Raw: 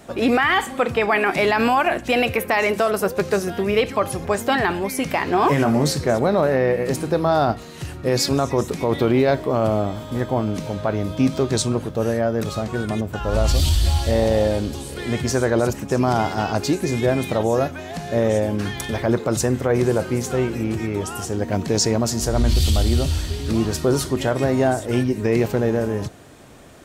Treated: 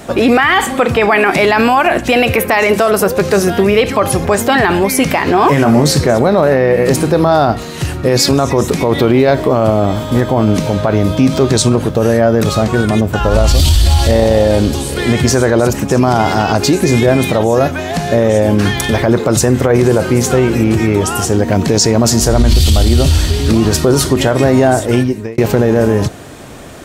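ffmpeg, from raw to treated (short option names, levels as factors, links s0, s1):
-filter_complex "[0:a]asplit=2[s0][s1];[s0]atrim=end=25.38,asetpts=PTS-STARTPTS,afade=t=out:st=24.74:d=0.64[s2];[s1]atrim=start=25.38,asetpts=PTS-STARTPTS,afade=t=in:d=0.004:c=hsin[s3];[s2][s3]concat=n=2:v=0:a=1,alimiter=level_in=5.01:limit=0.891:release=50:level=0:latency=1,volume=0.891"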